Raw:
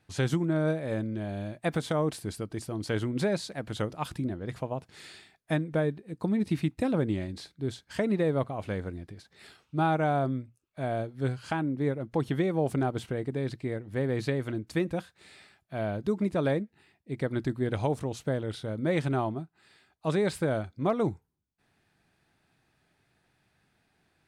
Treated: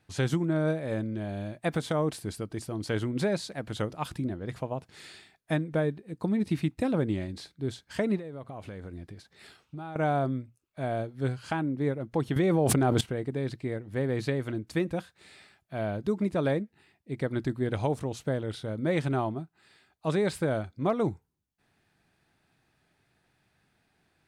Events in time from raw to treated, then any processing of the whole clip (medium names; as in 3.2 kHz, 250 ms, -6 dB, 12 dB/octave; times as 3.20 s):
8.17–9.96 s: compression 10:1, threshold -36 dBFS
12.36–13.01 s: level flattener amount 100%